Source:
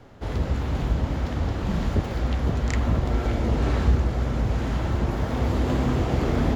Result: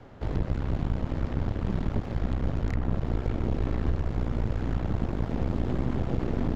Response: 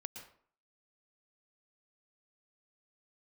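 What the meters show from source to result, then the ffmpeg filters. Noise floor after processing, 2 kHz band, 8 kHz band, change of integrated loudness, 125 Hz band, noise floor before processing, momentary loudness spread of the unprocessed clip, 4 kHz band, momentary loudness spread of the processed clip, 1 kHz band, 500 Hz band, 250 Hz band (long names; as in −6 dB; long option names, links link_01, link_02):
−35 dBFS, −9.0 dB, can't be measured, −5.0 dB, −5.0 dB, −30 dBFS, 4 LU, −11.0 dB, 2 LU, −8.0 dB, −6.0 dB, −4.0 dB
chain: -filter_complex "[0:a]aeval=exprs='0.398*(cos(1*acos(clip(val(0)/0.398,-1,1)))-cos(1*PI/2))+0.0891*(cos(6*acos(clip(val(0)/0.398,-1,1)))-cos(6*PI/2))':channel_layout=same,aemphasis=mode=reproduction:type=50kf,acrossover=split=420|2400[link_01][link_02][link_03];[link_01]acompressor=threshold=-23dB:ratio=4[link_04];[link_02]acompressor=threshold=-42dB:ratio=4[link_05];[link_03]acompressor=threshold=-56dB:ratio=4[link_06];[link_04][link_05][link_06]amix=inputs=3:normalize=0"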